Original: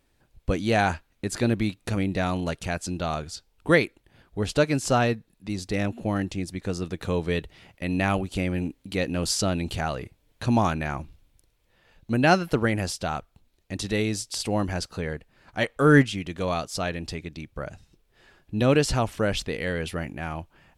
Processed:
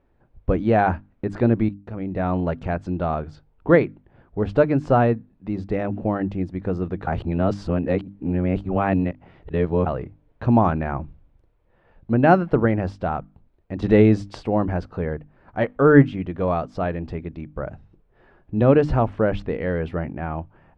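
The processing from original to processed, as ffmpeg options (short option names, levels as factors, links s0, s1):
-filter_complex "[0:a]asettb=1/sr,asplit=3[s0][s1][s2];[s0]atrim=end=13.824[s3];[s1]atrim=start=13.82:end=14.4,asetpts=PTS-STARTPTS,afade=t=in:d=0.004:c=qsin,afade=t=out:st=0.576:d=0.004:c=qsin,acontrast=84[s4];[s2]atrim=start=14.396[s5];[s3][s4]acrossfade=d=0.004:c1=hsin:c2=qsin[s6];[s6][s5]acrossfade=d=0.004:c1=qsin:c2=hsin,asplit=4[s7][s8][s9][s10];[s7]atrim=end=1.69,asetpts=PTS-STARTPTS,afade=t=out:st=1.686:d=0.004:c=hsin:silence=0.223872[s11];[s8]atrim=start=1.69:end=7.072,asetpts=PTS-STARTPTS,afade=t=in:d=0.65:c=qua:silence=0.223872[s12];[s9]atrim=start=7.068:end=9.862,asetpts=PTS-STARTPTS,areverse[s13];[s10]atrim=start=9.858[s14];[s11][s12]concat=n=2:v=0:a=1[s15];[s15][s13]acrossfade=d=0.004:c1=hsin:c2=hsin[s16];[s16][s14]acrossfade=d=0.004:c1=hsin:c2=hsin,lowpass=1200,bandreject=f=50:t=h:w=6,bandreject=f=100:t=h:w=6,bandreject=f=150:t=h:w=6,bandreject=f=200:t=h:w=6,bandreject=f=250:t=h:w=6,bandreject=f=300:t=h:w=6,volume=1.88"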